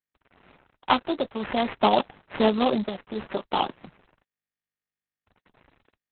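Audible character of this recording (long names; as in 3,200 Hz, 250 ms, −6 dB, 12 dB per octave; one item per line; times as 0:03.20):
aliases and images of a low sample rate 4,100 Hz, jitter 20%
tremolo triangle 0.58 Hz, depth 85%
a quantiser's noise floor 10 bits, dither none
Opus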